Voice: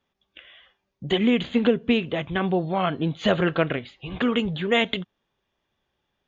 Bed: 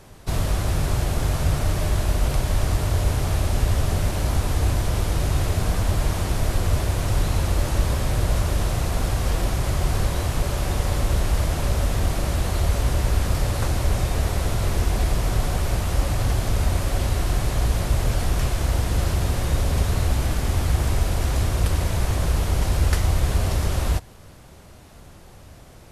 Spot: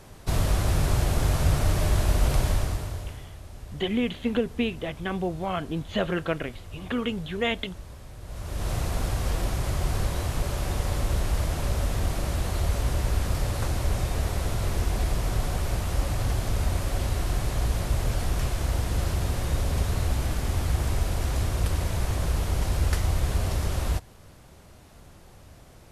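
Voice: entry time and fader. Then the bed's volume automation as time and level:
2.70 s, -5.5 dB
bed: 2.47 s -1 dB
3.33 s -21 dB
8.20 s -21 dB
8.71 s -4.5 dB

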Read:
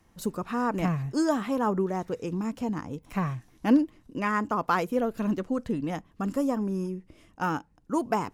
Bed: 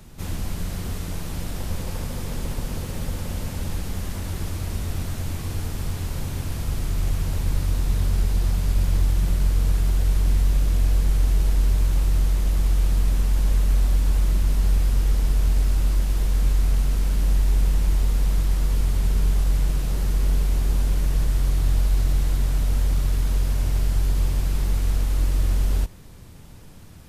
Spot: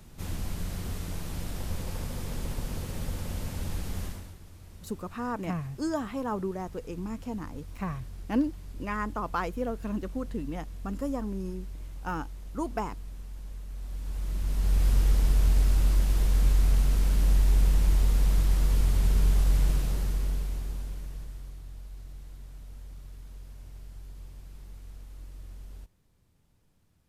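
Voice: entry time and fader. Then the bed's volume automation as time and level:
4.65 s, -5.5 dB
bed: 4.05 s -5.5 dB
4.39 s -21 dB
13.70 s -21 dB
14.88 s -2.5 dB
19.72 s -2.5 dB
21.67 s -23.5 dB

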